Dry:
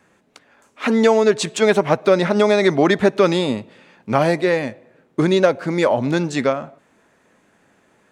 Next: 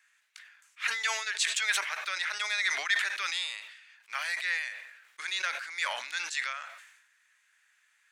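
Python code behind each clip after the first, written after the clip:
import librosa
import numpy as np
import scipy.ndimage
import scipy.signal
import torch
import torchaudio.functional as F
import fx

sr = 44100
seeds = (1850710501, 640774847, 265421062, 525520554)

y = scipy.signal.sosfilt(scipy.signal.cheby1(3, 1.0, 1700.0, 'highpass', fs=sr, output='sos'), x)
y = fx.sustainer(y, sr, db_per_s=58.0)
y = y * 10.0 ** (-4.0 / 20.0)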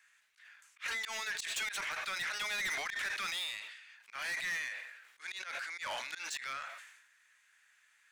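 y = fx.low_shelf(x, sr, hz=270.0, db=10.5)
y = fx.auto_swell(y, sr, attack_ms=154.0)
y = 10.0 ** (-32.5 / 20.0) * np.tanh(y / 10.0 ** (-32.5 / 20.0))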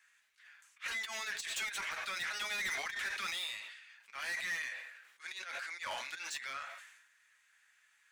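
y = fx.notch_comb(x, sr, f0_hz=150.0)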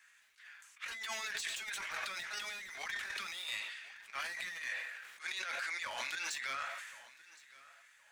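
y = fx.over_compress(x, sr, threshold_db=-42.0, ratio=-0.5)
y = fx.echo_feedback(y, sr, ms=1066, feedback_pct=34, wet_db=-20.5)
y = fx.sustainer(y, sr, db_per_s=40.0)
y = y * 10.0 ** (1.0 / 20.0)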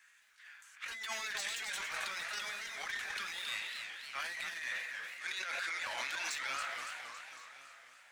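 y = fx.echo_warbled(x, sr, ms=276, feedback_pct=57, rate_hz=2.8, cents=186, wet_db=-6.5)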